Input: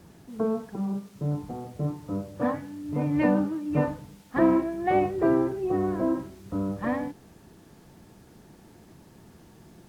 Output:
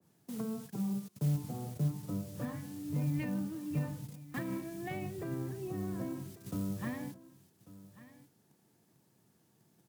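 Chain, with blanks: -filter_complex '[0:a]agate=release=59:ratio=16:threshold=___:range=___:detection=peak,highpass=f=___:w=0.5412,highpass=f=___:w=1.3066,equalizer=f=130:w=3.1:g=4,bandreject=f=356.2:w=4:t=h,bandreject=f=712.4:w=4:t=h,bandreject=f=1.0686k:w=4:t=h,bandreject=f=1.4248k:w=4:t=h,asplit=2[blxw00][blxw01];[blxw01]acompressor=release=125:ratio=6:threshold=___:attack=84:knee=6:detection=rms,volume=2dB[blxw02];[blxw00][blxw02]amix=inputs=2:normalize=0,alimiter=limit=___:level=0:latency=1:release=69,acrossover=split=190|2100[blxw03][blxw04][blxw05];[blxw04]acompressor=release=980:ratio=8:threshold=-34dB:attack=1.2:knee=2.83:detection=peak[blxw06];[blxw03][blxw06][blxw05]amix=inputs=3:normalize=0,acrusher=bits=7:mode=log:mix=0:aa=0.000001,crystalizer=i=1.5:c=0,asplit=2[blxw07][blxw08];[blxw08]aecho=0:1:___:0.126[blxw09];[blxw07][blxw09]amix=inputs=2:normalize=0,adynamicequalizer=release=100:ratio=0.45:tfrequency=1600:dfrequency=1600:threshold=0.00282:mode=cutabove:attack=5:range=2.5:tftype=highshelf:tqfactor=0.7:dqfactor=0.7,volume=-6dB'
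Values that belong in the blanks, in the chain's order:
-48dB, -20dB, 100, 100, -34dB, -12.5dB, 1143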